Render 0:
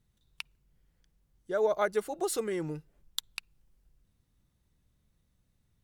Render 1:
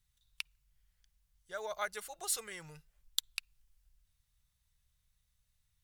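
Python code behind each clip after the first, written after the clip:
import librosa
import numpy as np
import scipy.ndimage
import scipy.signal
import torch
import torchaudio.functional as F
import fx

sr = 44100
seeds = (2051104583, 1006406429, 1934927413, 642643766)

y = fx.tone_stack(x, sr, knobs='10-0-10')
y = F.gain(torch.from_numpy(y), 2.5).numpy()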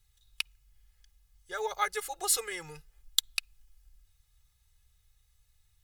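y = x + 0.87 * np.pad(x, (int(2.4 * sr / 1000.0), 0))[:len(x)]
y = F.gain(torch.from_numpy(y), 5.0).numpy()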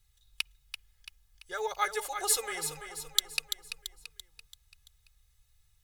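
y = fx.echo_feedback(x, sr, ms=337, feedback_pct=48, wet_db=-8.5)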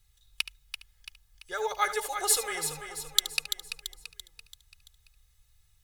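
y = x + 10.0 ** (-14.0 / 20.0) * np.pad(x, (int(73 * sr / 1000.0), 0))[:len(x)]
y = F.gain(torch.from_numpy(y), 2.5).numpy()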